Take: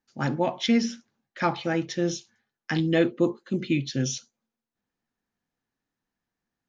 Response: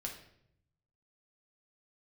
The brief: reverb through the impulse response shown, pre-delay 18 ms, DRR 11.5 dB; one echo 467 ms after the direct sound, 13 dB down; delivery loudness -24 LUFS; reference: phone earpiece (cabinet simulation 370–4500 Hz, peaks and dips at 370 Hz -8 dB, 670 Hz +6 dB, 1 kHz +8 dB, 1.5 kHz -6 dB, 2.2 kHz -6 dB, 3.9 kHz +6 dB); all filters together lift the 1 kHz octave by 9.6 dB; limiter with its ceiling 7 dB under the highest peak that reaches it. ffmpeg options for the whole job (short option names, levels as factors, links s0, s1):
-filter_complex "[0:a]equalizer=f=1000:t=o:g=7,alimiter=limit=0.178:level=0:latency=1,aecho=1:1:467:0.224,asplit=2[s0][s1];[1:a]atrim=start_sample=2205,adelay=18[s2];[s1][s2]afir=irnorm=-1:irlink=0,volume=0.299[s3];[s0][s3]amix=inputs=2:normalize=0,highpass=370,equalizer=f=370:t=q:w=4:g=-8,equalizer=f=670:t=q:w=4:g=6,equalizer=f=1000:t=q:w=4:g=8,equalizer=f=1500:t=q:w=4:g=-6,equalizer=f=2200:t=q:w=4:g=-6,equalizer=f=3900:t=q:w=4:g=6,lowpass=f=4500:w=0.5412,lowpass=f=4500:w=1.3066,volume=1.78"